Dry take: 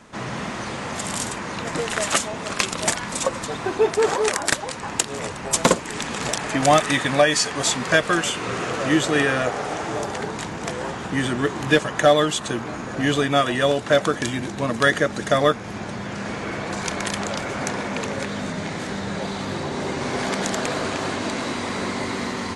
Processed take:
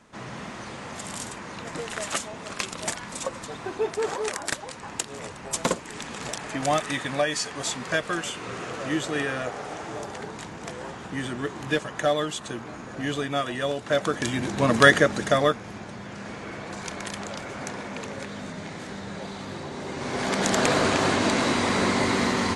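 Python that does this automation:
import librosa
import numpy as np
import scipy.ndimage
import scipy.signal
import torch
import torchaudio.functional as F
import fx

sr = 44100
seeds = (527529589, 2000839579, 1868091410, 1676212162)

y = fx.gain(x, sr, db=fx.line((13.79, -8.0), (14.78, 4.0), (15.86, -8.0), (19.85, -8.0), (20.65, 3.5)))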